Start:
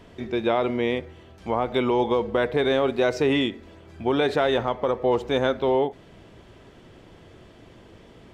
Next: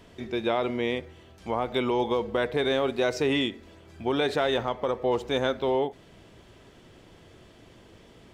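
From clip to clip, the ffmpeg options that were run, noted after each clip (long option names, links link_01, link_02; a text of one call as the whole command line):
ffmpeg -i in.wav -af "highshelf=frequency=3500:gain=7,volume=-4dB" out.wav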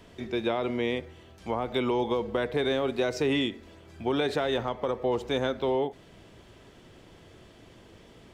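ffmpeg -i in.wav -filter_complex "[0:a]acrossover=split=380[link_01][link_02];[link_02]acompressor=threshold=-28dB:ratio=2.5[link_03];[link_01][link_03]amix=inputs=2:normalize=0" out.wav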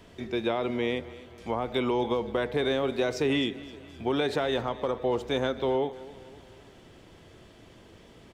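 ffmpeg -i in.wav -af "aecho=1:1:260|520|780|1040:0.119|0.0606|0.0309|0.0158" out.wav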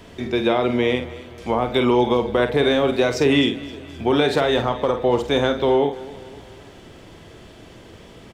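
ffmpeg -i in.wav -filter_complex "[0:a]asplit=2[link_01][link_02];[link_02]adelay=49,volume=-8.5dB[link_03];[link_01][link_03]amix=inputs=2:normalize=0,volume=8.5dB" out.wav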